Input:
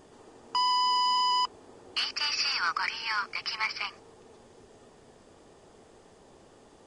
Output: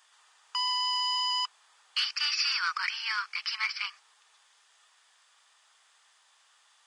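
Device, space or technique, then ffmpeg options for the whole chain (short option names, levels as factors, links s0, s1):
headphones lying on a table: -af "highpass=f=1200:w=0.5412,highpass=f=1200:w=1.3066,equalizer=f=3500:t=o:w=0.38:g=4"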